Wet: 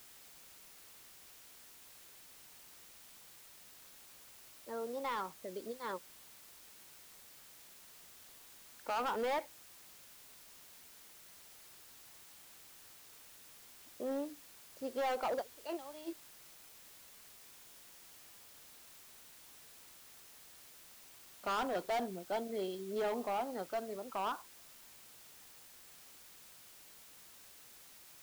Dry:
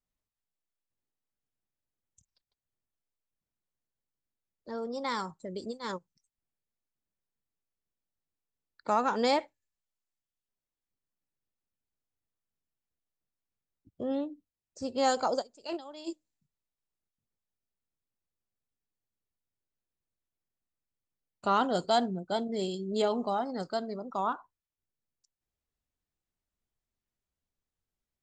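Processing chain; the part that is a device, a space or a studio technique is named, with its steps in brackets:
aircraft radio (band-pass filter 320–2,600 Hz; hard clipping −28.5 dBFS, distortion −8 dB; white noise bed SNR 13 dB)
level −3 dB

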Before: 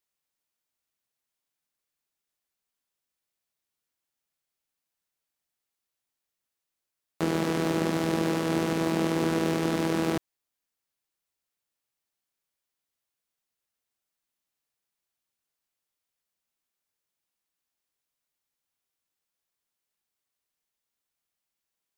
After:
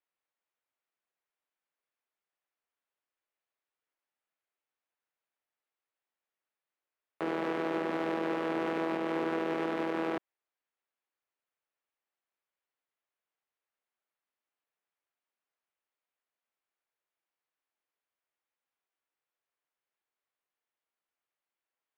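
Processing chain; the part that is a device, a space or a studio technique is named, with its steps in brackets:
DJ mixer with the lows and highs turned down (three-way crossover with the lows and the highs turned down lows −18 dB, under 310 Hz, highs −21 dB, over 2,900 Hz; brickwall limiter −23.5 dBFS, peak gain reduction 5.5 dB)

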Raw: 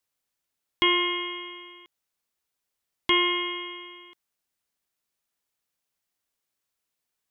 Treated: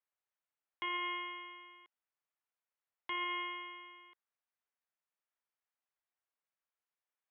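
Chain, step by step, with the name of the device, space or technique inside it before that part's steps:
DJ mixer with the lows and highs turned down (three-way crossover with the lows and the highs turned down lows −16 dB, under 510 Hz, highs −22 dB, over 2,600 Hz; brickwall limiter −23.5 dBFS, peak gain reduction 8 dB)
level −6 dB

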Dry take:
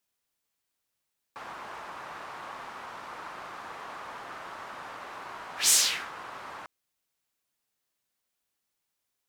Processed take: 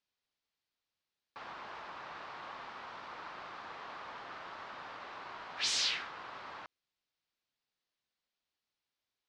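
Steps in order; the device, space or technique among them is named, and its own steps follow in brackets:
overdriven synthesiser ladder filter (soft clipping −18 dBFS, distortion −14 dB; transistor ladder low-pass 5,600 Hz, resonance 30%)
level +1.5 dB

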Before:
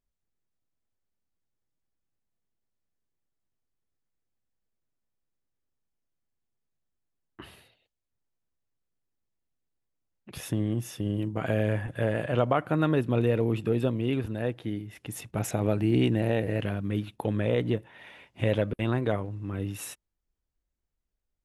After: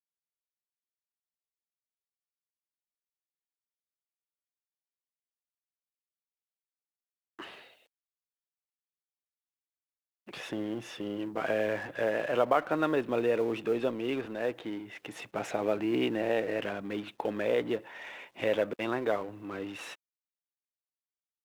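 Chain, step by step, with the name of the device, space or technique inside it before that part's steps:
phone line with mismatched companding (band-pass filter 380–3,300 Hz; mu-law and A-law mismatch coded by mu)

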